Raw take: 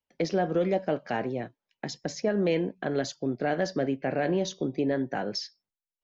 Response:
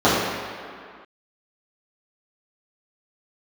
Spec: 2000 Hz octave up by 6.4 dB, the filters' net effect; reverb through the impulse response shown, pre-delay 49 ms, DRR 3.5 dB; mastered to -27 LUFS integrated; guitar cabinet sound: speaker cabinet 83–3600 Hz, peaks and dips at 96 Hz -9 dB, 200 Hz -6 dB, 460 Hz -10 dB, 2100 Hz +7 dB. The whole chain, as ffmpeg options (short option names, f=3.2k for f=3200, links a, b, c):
-filter_complex "[0:a]equalizer=f=2k:t=o:g=5,asplit=2[a][b];[1:a]atrim=start_sample=2205,adelay=49[c];[b][c]afir=irnorm=-1:irlink=0,volume=-29dB[d];[a][d]amix=inputs=2:normalize=0,highpass=83,equalizer=f=96:t=q:w=4:g=-9,equalizer=f=200:t=q:w=4:g=-6,equalizer=f=460:t=q:w=4:g=-10,equalizer=f=2.1k:t=q:w=4:g=7,lowpass=f=3.6k:w=0.5412,lowpass=f=3.6k:w=1.3066,volume=1.5dB"